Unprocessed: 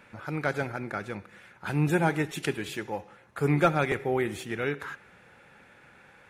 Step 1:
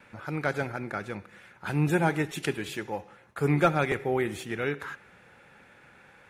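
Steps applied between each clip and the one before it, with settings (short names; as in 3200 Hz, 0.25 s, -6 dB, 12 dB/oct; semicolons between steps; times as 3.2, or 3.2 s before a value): gate with hold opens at -50 dBFS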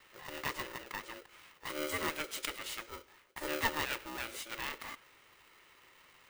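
octaver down 1 oct, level -6 dB; passive tone stack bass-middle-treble 10-0-10; polarity switched at an audio rate 450 Hz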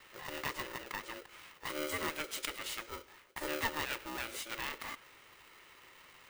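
compressor 1.5:1, threshold -45 dBFS, peak gain reduction 7 dB; gain +3.5 dB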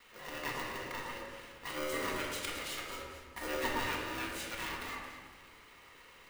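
echo with dull and thin repeats by turns 0.111 s, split 1600 Hz, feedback 57%, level -4 dB; shoebox room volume 870 m³, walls mixed, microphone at 1.8 m; gain -3.5 dB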